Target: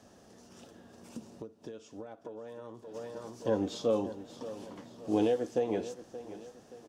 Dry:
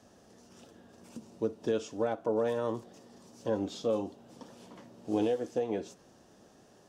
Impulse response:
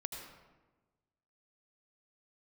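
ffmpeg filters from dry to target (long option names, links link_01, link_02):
-filter_complex "[0:a]aecho=1:1:576|1152|1728|2304:0.2|0.0858|0.0369|0.0159,asplit=3[link_01][link_02][link_03];[link_01]afade=type=out:start_time=1.35:duration=0.02[link_04];[link_02]acompressor=threshold=-43dB:ratio=12,afade=type=in:start_time=1.35:duration=0.02,afade=type=out:start_time=2.94:duration=0.02[link_05];[link_03]afade=type=in:start_time=2.94:duration=0.02[link_06];[link_04][link_05][link_06]amix=inputs=3:normalize=0,volume=1.5dB"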